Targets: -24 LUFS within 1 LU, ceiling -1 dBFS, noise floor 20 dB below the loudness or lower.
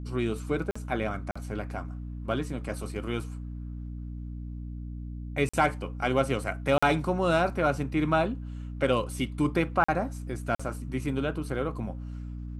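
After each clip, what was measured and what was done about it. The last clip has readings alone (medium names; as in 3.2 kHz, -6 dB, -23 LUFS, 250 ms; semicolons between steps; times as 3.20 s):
dropouts 6; longest dropout 45 ms; hum 60 Hz; highest harmonic 300 Hz; hum level -35 dBFS; loudness -30.0 LUFS; peak level -9.5 dBFS; loudness target -24.0 LUFS
-> interpolate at 0.71/1.31/5.49/6.78/9.84/10.55 s, 45 ms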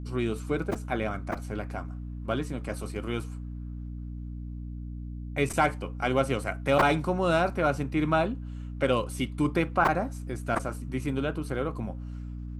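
dropouts 0; hum 60 Hz; highest harmonic 300 Hz; hum level -35 dBFS
-> hum notches 60/120/180/240/300 Hz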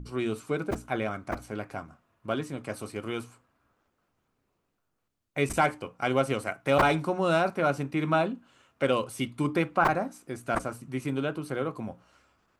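hum not found; loudness -29.0 LUFS; peak level -9.5 dBFS; loudness target -24.0 LUFS
-> trim +5 dB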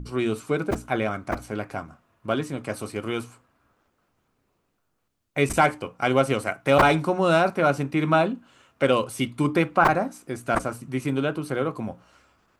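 loudness -24.0 LUFS; peak level -4.5 dBFS; noise floor -73 dBFS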